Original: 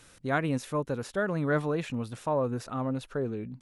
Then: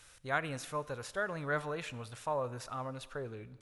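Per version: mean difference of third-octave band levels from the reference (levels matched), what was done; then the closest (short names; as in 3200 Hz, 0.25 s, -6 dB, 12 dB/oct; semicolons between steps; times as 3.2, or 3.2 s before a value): 5.5 dB: bell 240 Hz -14.5 dB 1.9 oct; Schroeder reverb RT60 1.4 s, combs from 28 ms, DRR 17 dB; gain -1.5 dB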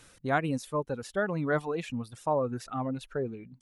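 4.0 dB: reverb removal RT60 1.7 s; dynamic EQ 780 Hz, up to +5 dB, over -49 dBFS, Q 4.6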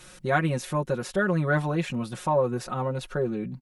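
2.5 dB: comb 5.5 ms, depth 95%; in parallel at -3 dB: compressor, threshold -35 dBFS, peak gain reduction 15 dB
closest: third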